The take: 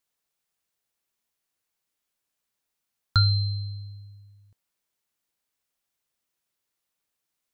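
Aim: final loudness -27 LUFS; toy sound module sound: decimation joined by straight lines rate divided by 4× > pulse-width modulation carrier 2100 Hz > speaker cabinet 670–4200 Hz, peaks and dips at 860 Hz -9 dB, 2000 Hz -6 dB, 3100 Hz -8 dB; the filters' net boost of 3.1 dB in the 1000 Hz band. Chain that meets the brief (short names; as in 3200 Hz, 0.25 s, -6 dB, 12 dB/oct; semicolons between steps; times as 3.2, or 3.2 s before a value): bell 1000 Hz +9 dB; decimation joined by straight lines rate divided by 4×; pulse-width modulation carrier 2100 Hz; speaker cabinet 670–4200 Hz, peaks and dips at 860 Hz -9 dB, 2000 Hz -6 dB, 3100 Hz -8 dB; gain +9 dB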